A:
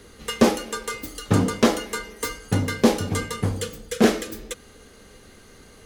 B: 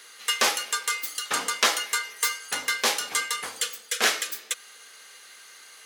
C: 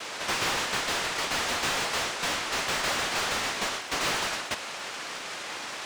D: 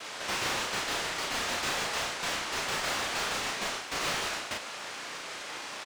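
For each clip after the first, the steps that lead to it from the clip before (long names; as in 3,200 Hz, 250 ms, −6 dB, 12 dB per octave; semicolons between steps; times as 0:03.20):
high-pass filter 1,400 Hz 12 dB per octave; level +6 dB
cochlear-implant simulation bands 1; mid-hump overdrive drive 34 dB, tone 1,500 Hz, clips at −7.5 dBFS; surface crackle 460 per second −36 dBFS; level −7 dB
double-tracking delay 35 ms −3 dB; level −5 dB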